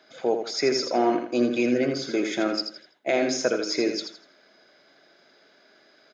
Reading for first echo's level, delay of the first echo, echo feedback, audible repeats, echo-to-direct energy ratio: −7.0 dB, 82 ms, 31%, 3, −6.5 dB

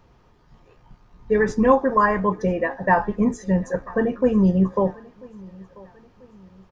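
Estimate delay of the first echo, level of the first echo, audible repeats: 990 ms, −23.5 dB, 2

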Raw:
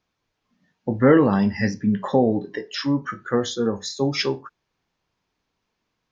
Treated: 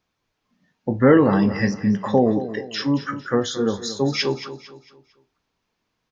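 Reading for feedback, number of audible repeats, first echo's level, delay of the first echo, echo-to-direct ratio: 38%, 3, −13.0 dB, 226 ms, −12.5 dB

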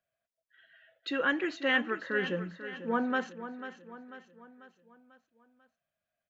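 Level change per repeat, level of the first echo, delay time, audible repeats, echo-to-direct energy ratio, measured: −6.0 dB, −12.0 dB, 493 ms, 4, −11.0 dB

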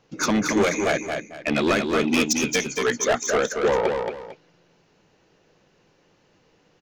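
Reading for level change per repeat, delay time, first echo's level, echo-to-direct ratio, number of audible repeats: −11.0 dB, 225 ms, −5.0 dB, −4.5 dB, 2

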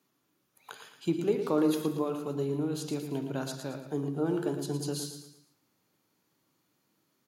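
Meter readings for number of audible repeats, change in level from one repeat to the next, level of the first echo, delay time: 4, −8.0 dB, −9.0 dB, 113 ms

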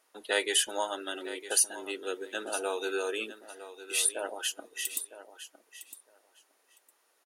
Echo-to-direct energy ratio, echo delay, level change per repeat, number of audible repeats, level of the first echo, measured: −13.5 dB, 958 ms, −16.0 dB, 2, −13.5 dB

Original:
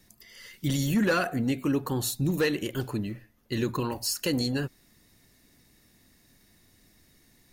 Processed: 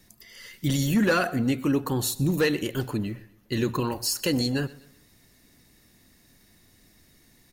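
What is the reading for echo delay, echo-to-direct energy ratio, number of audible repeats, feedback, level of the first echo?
125 ms, −20.0 dB, 2, 39%, −20.5 dB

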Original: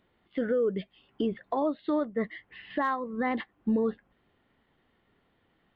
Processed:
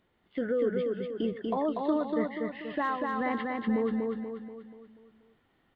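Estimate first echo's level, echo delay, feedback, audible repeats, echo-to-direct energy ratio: −3.0 dB, 241 ms, 48%, 6, −2.0 dB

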